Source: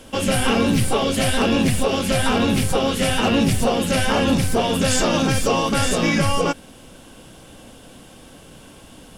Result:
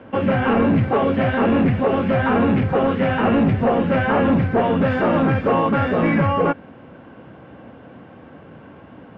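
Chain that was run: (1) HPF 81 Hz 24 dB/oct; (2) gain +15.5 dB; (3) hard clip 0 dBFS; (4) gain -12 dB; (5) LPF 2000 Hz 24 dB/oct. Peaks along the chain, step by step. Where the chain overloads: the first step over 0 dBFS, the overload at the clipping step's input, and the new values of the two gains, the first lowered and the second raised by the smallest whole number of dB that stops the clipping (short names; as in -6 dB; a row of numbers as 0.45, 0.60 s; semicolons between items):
-5.5, +10.0, 0.0, -12.0, -10.5 dBFS; step 2, 10.0 dB; step 2 +5.5 dB, step 4 -2 dB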